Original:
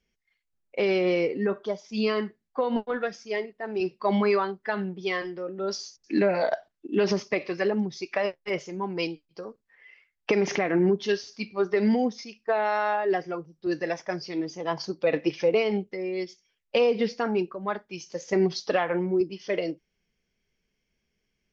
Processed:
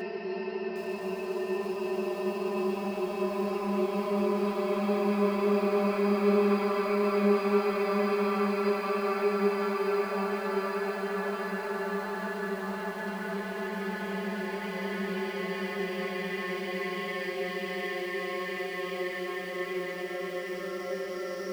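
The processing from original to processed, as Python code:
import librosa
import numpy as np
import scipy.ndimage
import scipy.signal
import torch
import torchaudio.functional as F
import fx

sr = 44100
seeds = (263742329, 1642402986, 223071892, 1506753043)

y = fx.paulstretch(x, sr, seeds[0], factor=12.0, window_s=1.0, from_s=3.67)
y = fx.notch_comb(y, sr, f0_hz=160.0)
y = fx.echo_crushed(y, sr, ms=758, feedback_pct=35, bits=7, wet_db=-7.5)
y = y * 10.0 ** (-3.0 / 20.0)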